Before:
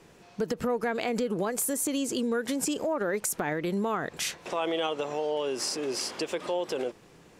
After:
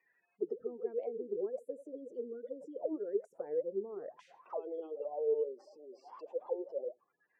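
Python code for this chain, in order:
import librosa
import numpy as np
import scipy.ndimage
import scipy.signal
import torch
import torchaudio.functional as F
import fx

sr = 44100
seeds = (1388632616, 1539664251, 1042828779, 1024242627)

y = x + 10.0 ** (-18.5 / 20.0) * np.pad(x, (int(83 * sr / 1000.0), 0))[:len(x)]
y = fx.spec_gate(y, sr, threshold_db=-15, keep='strong')
y = fx.auto_wah(y, sr, base_hz=240.0, top_hz=2000.0, q=18.0, full_db=-23.0, direction='down')
y = y * librosa.db_to_amplitude(4.5)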